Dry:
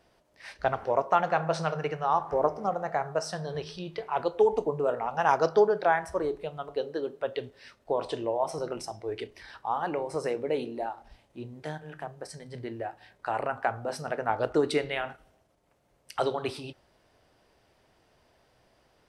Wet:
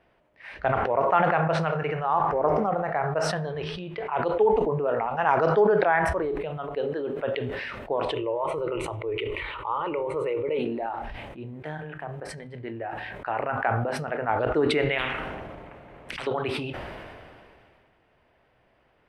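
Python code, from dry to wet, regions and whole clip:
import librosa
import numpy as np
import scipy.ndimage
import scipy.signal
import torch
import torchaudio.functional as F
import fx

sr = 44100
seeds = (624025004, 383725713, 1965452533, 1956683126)

y = fx.chain(x, sr, fx.lowpass(hz=8700.0, slope=12),
    fx.fixed_phaser(hz=1100.0, stages=8),
    fx.env_flatten(amount_pct=50), at=(8.14, 10.59))
y = fx.chain(y, sr, fx.lowpass(hz=2700.0, slope=6),
    fx.spectral_comp(ratio=10.0), at=(14.98, 16.27))
y = fx.high_shelf_res(y, sr, hz=3700.0, db=-13.5, q=1.5)
y = fx.sustainer(y, sr, db_per_s=25.0)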